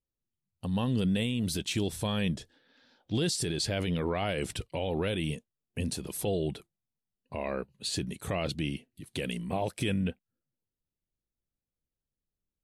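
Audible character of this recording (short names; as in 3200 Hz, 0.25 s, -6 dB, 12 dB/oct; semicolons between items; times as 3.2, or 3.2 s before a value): noise floor -91 dBFS; spectral tilt -5.0 dB/oct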